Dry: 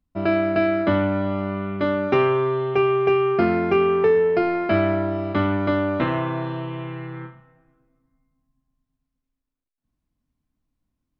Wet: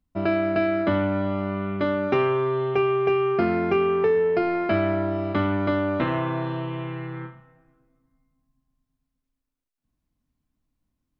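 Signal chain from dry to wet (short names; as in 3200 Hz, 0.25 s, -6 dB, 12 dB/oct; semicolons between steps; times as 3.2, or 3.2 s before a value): compressor 1.5:1, threshold -23 dBFS, peak gain reduction 3.5 dB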